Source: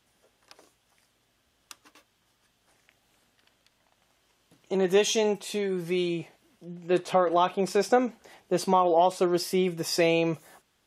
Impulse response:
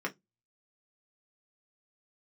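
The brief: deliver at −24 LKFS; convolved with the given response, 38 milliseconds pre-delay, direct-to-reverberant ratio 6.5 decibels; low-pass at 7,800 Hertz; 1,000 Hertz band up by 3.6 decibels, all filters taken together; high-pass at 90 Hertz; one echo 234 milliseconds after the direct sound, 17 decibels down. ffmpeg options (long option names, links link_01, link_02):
-filter_complex "[0:a]highpass=90,lowpass=7800,equalizer=frequency=1000:width_type=o:gain=5,aecho=1:1:234:0.141,asplit=2[link_01][link_02];[1:a]atrim=start_sample=2205,adelay=38[link_03];[link_02][link_03]afir=irnorm=-1:irlink=0,volume=-11.5dB[link_04];[link_01][link_04]amix=inputs=2:normalize=0,volume=-0.5dB"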